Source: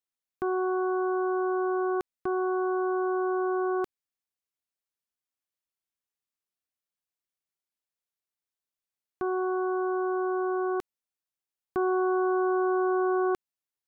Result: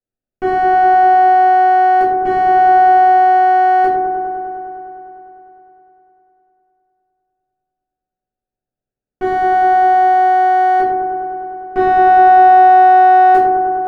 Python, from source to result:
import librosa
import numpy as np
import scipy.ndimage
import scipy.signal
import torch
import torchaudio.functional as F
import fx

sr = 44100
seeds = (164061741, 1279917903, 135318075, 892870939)

y = fx.wiener(x, sr, points=41)
y = fx.echo_wet_lowpass(y, sr, ms=101, feedback_pct=82, hz=1400.0, wet_db=-5.0)
y = fx.room_shoebox(y, sr, seeds[0], volume_m3=67.0, walls='mixed', distance_m=1.9)
y = y * 10.0 ** (5.5 / 20.0)